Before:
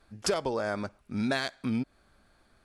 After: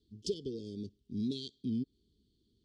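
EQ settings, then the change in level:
high-pass filter 54 Hz
Chebyshev band-stop filter 430–3,100 Hz, order 5
high-frequency loss of the air 100 metres
−4.0 dB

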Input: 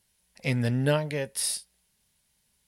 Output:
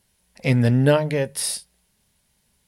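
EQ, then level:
tilt shelving filter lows +3 dB, about 1,400 Hz
mains-hum notches 50/100/150 Hz
+6.0 dB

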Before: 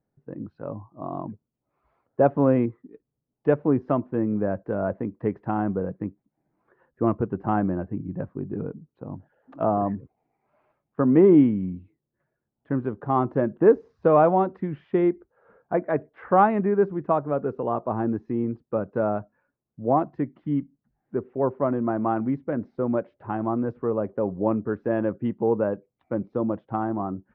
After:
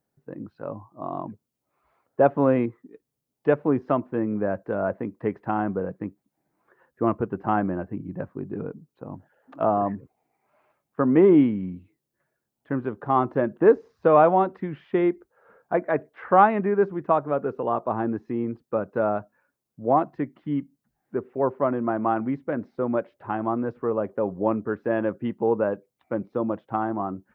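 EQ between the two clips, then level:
spectral tilt +2 dB per octave
+2.5 dB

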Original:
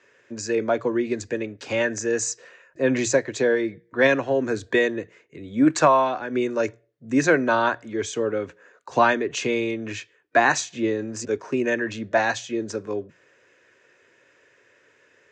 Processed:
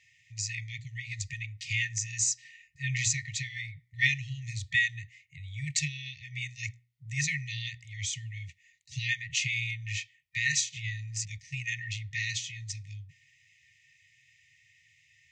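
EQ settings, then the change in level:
linear-phase brick-wall band-stop 150–1,800 Hz
low-shelf EQ 170 Hz +5.5 dB
0.0 dB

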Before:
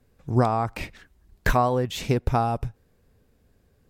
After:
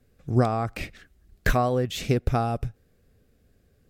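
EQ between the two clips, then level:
parametric band 940 Hz −12.5 dB 0.32 octaves
0.0 dB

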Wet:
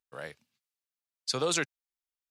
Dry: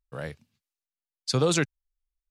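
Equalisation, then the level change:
high-pass filter 610 Hz 6 dB per octave
−1.5 dB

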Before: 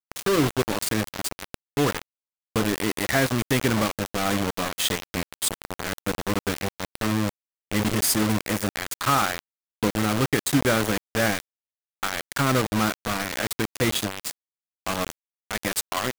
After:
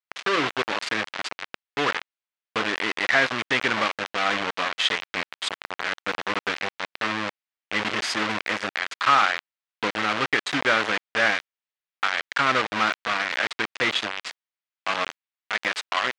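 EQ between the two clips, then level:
resonant band-pass 2,200 Hz, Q 0.72
high-frequency loss of the air 110 metres
+7.5 dB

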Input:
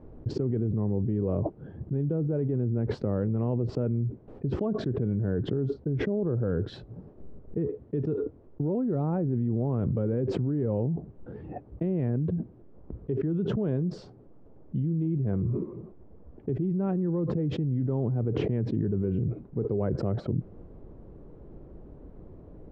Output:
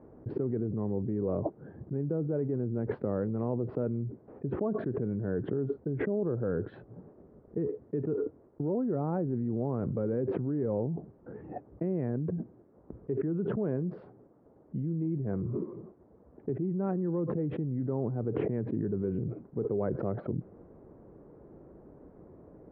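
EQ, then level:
high-pass filter 240 Hz 6 dB per octave
low-pass filter 2,000 Hz 24 dB per octave
0.0 dB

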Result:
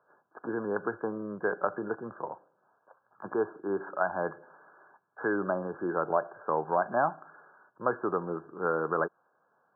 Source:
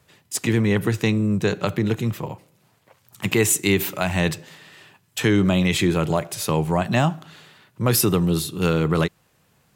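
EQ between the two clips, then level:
high-pass filter 550 Hz 12 dB per octave
linear-phase brick-wall low-pass 1,700 Hz
−1.5 dB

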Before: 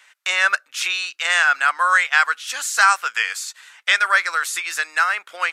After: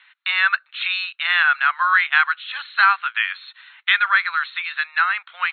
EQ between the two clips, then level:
high-pass filter 940 Hz 24 dB per octave
linear-phase brick-wall low-pass 4,300 Hz
0.0 dB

